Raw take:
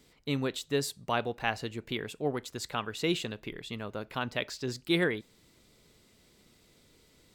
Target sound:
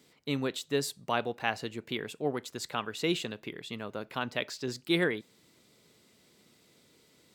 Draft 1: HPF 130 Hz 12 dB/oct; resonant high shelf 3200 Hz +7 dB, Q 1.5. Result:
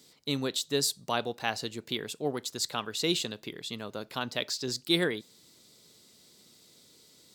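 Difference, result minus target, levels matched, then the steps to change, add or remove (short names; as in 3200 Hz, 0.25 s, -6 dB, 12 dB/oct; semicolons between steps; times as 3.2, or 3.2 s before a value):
8000 Hz band +6.0 dB
remove: resonant high shelf 3200 Hz +7 dB, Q 1.5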